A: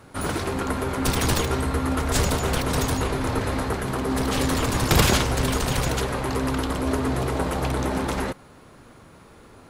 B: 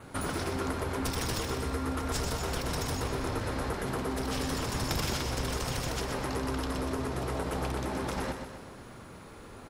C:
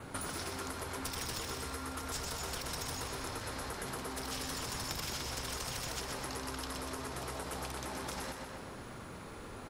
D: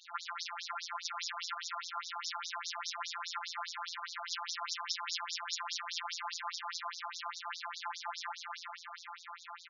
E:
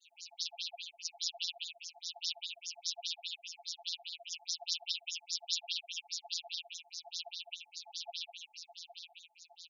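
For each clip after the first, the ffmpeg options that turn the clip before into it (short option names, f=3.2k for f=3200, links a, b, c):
-filter_complex "[0:a]adynamicequalizer=threshold=0.00282:dfrequency=5300:dqfactor=6.2:tfrequency=5300:tqfactor=6.2:attack=5:release=100:ratio=0.375:range=4:mode=boostabove:tftype=bell,acompressor=threshold=-31dB:ratio=5,asplit=2[a][b];[b]aecho=0:1:125|250|375|500|625|750:0.447|0.228|0.116|0.0593|0.0302|0.0154[c];[a][c]amix=inputs=2:normalize=0"
-filter_complex "[0:a]acrossover=split=720|4000[a][b][c];[a]acompressor=threshold=-46dB:ratio=4[d];[b]acompressor=threshold=-45dB:ratio=4[e];[c]acompressor=threshold=-42dB:ratio=4[f];[d][e][f]amix=inputs=3:normalize=0,volume=1.5dB"
-filter_complex "[0:a]asplit=6[a][b][c][d][e][f];[b]adelay=444,afreqshift=36,volume=-6.5dB[g];[c]adelay=888,afreqshift=72,volume=-13.4dB[h];[d]adelay=1332,afreqshift=108,volume=-20.4dB[i];[e]adelay=1776,afreqshift=144,volume=-27.3dB[j];[f]adelay=2220,afreqshift=180,volume=-34.2dB[k];[a][g][h][i][j][k]amix=inputs=6:normalize=0,afftfilt=real='hypot(re,im)*cos(PI*b)':imag='0':win_size=1024:overlap=0.75,afftfilt=real='re*between(b*sr/1024,940*pow(5100/940,0.5+0.5*sin(2*PI*4.9*pts/sr))/1.41,940*pow(5100/940,0.5+0.5*sin(2*PI*4.9*pts/sr))*1.41)':imag='im*between(b*sr/1024,940*pow(5100/940,0.5+0.5*sin(2*PI*4.9*pts/sr))/1.41,940*pow(5100/940,0.5+0.5*sin(2*PI*4.9*pts/sr))*1.41)':win_size=1024:overlap=0.75,volume=10dB"
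-filter_complex "[0:a]adynamicequalizer=threshold=0.002:dfrequency=3400:dqfactor=1.3:tfrequency=3400:tqfactor=1.3:attack=5:release=100:ratio=0.375:range=2:mode=boostabove:tftype=bell,asuperstop=centerf=1400:order=20:qfactor=0.81,asplit=2[a][b];[b]afreqshift=-1.2[c];[a][c]amix=inputs=2:normalize=1,volume=3dB"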